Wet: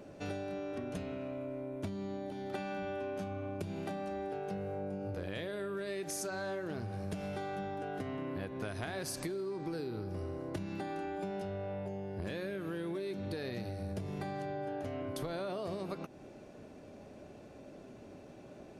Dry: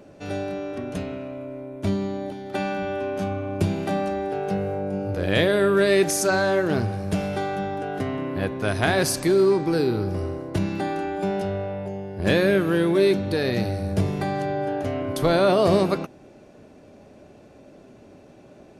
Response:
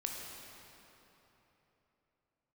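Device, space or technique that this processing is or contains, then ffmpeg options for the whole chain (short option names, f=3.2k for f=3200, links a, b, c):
serial compression, leveller first: -af "acompressor=threshold=-21dB:ratio=6,acompressor=threshold=-33dB:ratio=6,volume=-3.5dB"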